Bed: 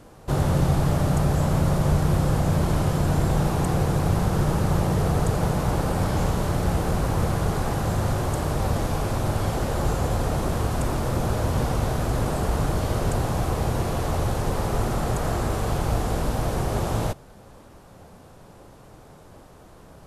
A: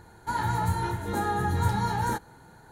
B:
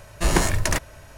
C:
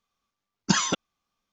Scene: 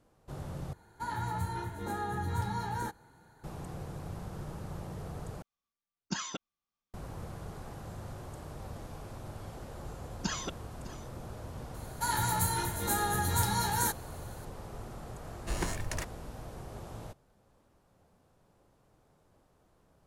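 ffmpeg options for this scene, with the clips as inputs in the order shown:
ffmpeg -i bed.wav -i cue0.wav -i cue1.wav -i cue2.wav -filter_complex "[1:a]asplit=2[link_01][link_02];[3:a]asplit=2[link_03][link_04];[0:a]volume=-19.5dB[link_05];[link_04]aecho=1:1:606:0.133[link_06];[link_02]crystalizer=i=5.5:c=0[link_07];[link_05]asplit=3[link_08][link_09][link_10];[link_08]atrim=end=0.734[link_11];[link_01]atrim=end=2.71,asetpts=PTS-STARTPTS,volume=-8dB[link_12];[link_09]atrim=start=3.436:end=5.424[link_13];[link_03]atrim=end=1.52,asetpts=PTS-STARTPTS,volume=-13.5dB[link_14];[link_10]atrim=start=6.936[link_15];[link_06]atrim=end=1.52,asetpts=PTS-STARTPTS,volume=-12.5dB,afade=type=in:duration=0.004:curve=hsin,afade=type=out:start_time=1.516:duration=0.004:curve=hsin,adelay=9550[link_16];[link_07]atrim=end=2.71,asetpts=PTS-STARTPTS,volume=-6dB,afade=type=in:duration=0.004:curve=hsin,afade=type=out:start_time=2.706:duration=0.004:curve=hsin,adelay=11740[link_17];[2:a]atrim=end=1.17,asetpts=PTS-STARTPTS,volume=-14.5dB,afade=type=in:duration=0.004:curve=hsin,afade=type=out:start_time=1.166:duration=0.004:curve=hsin,adelay=15260[link_18];[link_11][link_12]acrossfade=duration=0.004:curve1=hsin:curve2=hsin[link_19];[link_19][link_13]acrossfade=duration=0.004:curve1=hsin:curve2=hsin[link_20];[link_20][link_14]acrossfade=duration=0.004:curve1=hsin:curve2=hsin[link_21];[link_21][link_15]acrossfade=duration=0.004:curve1=hsin:curve2=hsin[link_22];[link_22][link_16][link_17][link_18]amix=inputs=4:normalize=0" out.wav

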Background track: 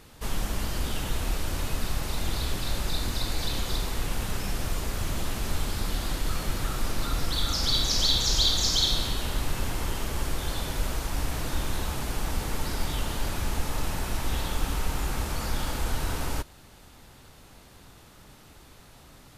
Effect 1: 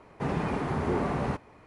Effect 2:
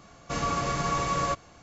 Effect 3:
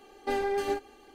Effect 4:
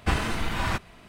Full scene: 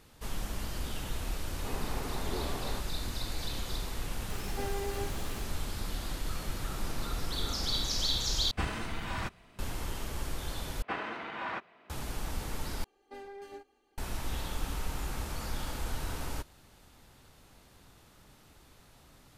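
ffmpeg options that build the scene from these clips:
ffmpeg -i bed.wav -i cue0.wav -i cue1.wav -i cue2.wav -i cue3.wav -filter_complex "[1:a]asplit=2[link_01][link_02];[3:a]asplit=2[link_03][link_04];[4:a]asplit=2[link_05][link_06];[0:a]volume=-7dB[link_07];[link_01]highpass=240[link_08];[link_03]aeval=exprs='val(0)+0.5*0.0266*sgn(val(0))':channel_layout=same[link_09];[link_06]highpass=350,lowpass=2400[link_10];[link_07]asplit=4[link_11][link_12][link_13][link_14];[link_11]atrim=end=8.514[link_15];[link_05]atrim=end=1.08,asetpts=PTS-STARTPTS,volume=-8.5dB[link_16];[link_12]atrim=start=9.586:end=10.824[link_17];[link_10]atrim=end=1.08,asetpts=PTS-STARTPTS,volume=-6dB[link_18];[link_13]atrim=start=11.896:end=12.844[link_19];[link_04]atrim=end=1.14,asetpts=PTS-STARTPTS,volume=-17dB[link_20];[link_14]atrim=start=13.976[link_21];[link_08]atrim=end=1.66,asetpts=PTS-STARTPTS,volume=-9dB,afade=type=in:duration=0.004:curve=hsin,afade=type=out:start_time=1.656:duration=0.004:curve=hsin,adelay=1440[link_22];[link_09]atrim=end=1.14,asetpts=PTS-STARTPTS,volume=-11dB,afade=type=in:duration=0.004:curve=hsin,afade=type=out:start_time=1.136:duration=0.004:curve=hsin,adelay=4300[link_23];[link_02]atrim=end=1.66,asetpts=PTS-STARTPTS,volume=-18dB,afade=type=in:duration=0.004:curve=hsin,afade=type=out:start_time=1.656:duration=0.004:curve=hsin,adelay=286650S[link_24];[link_15][link_16]acrossfade=duration=0.004:curve1=hsin:curve2=hsin[link_25];[link_25][link_17]acrossfade=duration=0.004:curve1=hsin:curve2=hsin[link_26];[link_26][link_18]acrossfade=duration=0.004:curve1=hsin:curve2=hsin[link_27];[link_27][link_19]acrossfade=duration=0.004:curve1=hsin:curve2=hsin[link_28];[link_28][link_20]acrossfade=duration=0.004:curve1=hsin:curve2=hsin[link_29];[link_29][link_21]acrossfade=duration=0.004:curve1=hsin:curve2=hsin[link_30];[link_30][link_22][link_23][link_24]amix=inputs=4:normalize=0" out.wav

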